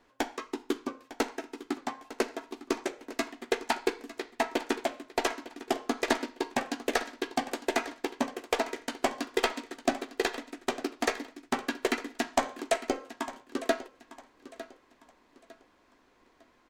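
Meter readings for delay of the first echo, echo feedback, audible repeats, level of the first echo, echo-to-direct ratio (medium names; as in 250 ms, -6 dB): 904 ms, 32%, 2, -15.5 dB, -15.0 dB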